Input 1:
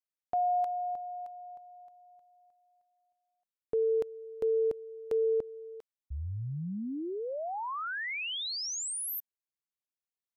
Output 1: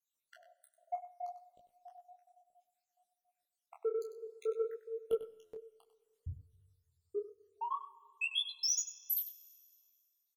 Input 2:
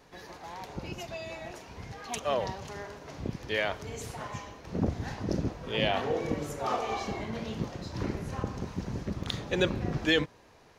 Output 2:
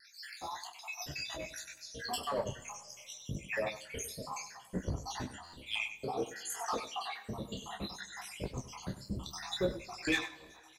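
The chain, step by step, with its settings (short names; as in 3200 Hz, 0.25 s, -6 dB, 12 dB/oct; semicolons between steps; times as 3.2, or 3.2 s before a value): random spectral dropouts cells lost 80%; bell 9100 Hz +10.5 dB 2.8 oct; in parallel at +2 dB: compressor, threshold -41 dBFS; on the sum: vibrato 0.66 Hz 9.5 cents; soft clip -21 dBFS; doubler 15 ms -10.5 dB; on a send: echo 97 ms -12 dB; on the sum: Schroeder reverb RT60 2.1 s, combs from 28 ms, DRR 18.5 dB; stuck buffer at 5.43, samples 512, times 8; detuned doubles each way 21 cents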